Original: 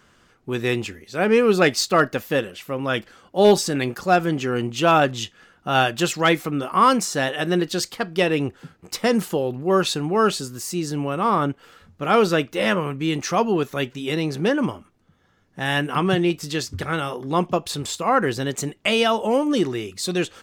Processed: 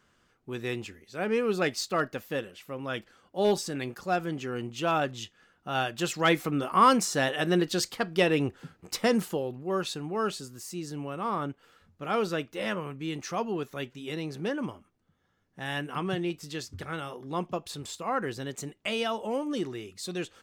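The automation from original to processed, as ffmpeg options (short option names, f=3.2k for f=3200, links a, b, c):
-af "volume=-4dB,afade=t=in:st=5.91:d=0.54:silence=0.473151,afade=t=out:st=8.97:d=0.62:silence=0.446684"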